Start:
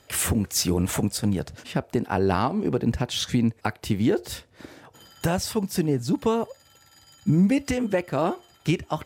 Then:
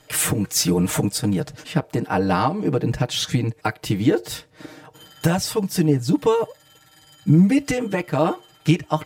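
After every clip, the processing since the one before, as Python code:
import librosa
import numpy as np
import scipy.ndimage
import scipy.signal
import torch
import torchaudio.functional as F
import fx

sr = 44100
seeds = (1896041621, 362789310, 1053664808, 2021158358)

y = x + 1.0 * np.pad(x, (int(6.5 * sr / 1000.0), 0))[:len(x)]
y = y * 10.0 ** (1.0 / 20.0)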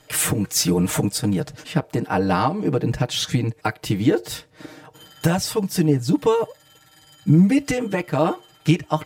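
y = x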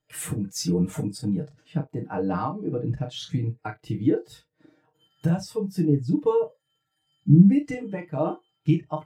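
y = fx.room_early_taps(x, sr, ms=(35, 66), db=(-6.0, -16.5))
y = fx.quant_float(y, sr, bits=6)
y = fx.spectral_expand(y, sr, expansion=1.5)
y = y * 10.0 ** (-1.0 / 20.0)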